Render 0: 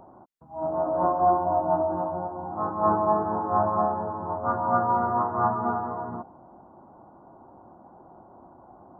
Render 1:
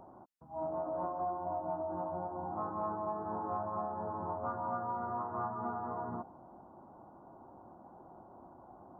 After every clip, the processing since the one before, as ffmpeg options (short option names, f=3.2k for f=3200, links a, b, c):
-af "acompressor=threshold=-30dB:ratio=6,volume=-4.5dB"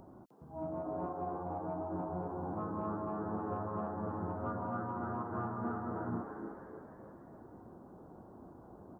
-filter_complex "[0:a]equalizer=f=850:t=o:w=1.6:g=-13.5,asplit=6[a][b][c][d][e][f];[b]adelay=304,afreqshift=99,volume=-7dB[g];[c]adelay=608,afreqshift=198,volume=-13.7dB[h];[d]adelay=912,afreqshift=297,volume=-20.5dB[i];[e]adelay=1216,afreqshift=396,volume=-27.2dB[j];[f]adelay=1520,afreqshift=495,volume=-34dB[k];[a][g][h][i][j][k]amix=inputs=6:normalize=0,volume=6.5dB"